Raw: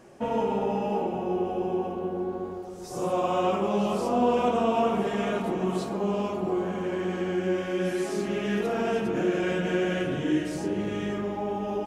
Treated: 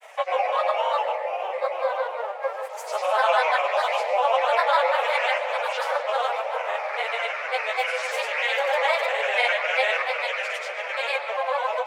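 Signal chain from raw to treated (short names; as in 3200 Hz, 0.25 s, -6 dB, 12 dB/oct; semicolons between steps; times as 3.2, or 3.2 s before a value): in parallel at +1.5 dB: limiter -22.5 dBFS, peak gain reduction 10.5 dB; on the sum: dynamic EQ 8200 Hz, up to -4 dB, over -49 dBFS, Q 0.7; grains, pitch spread up and down by 7 st; steep high-pass 520 Hz 72 dB/oct; bell 2300 Hz +10 dB 0.78 oct; echo with dull and thin repeats by turns 0.612 s, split 1000 Hz, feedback 56%, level -14 dB; on a send at -11 dB: reverb RT60 0.70 s, pre-delay 0.114 s; on the sum: gain +2 dB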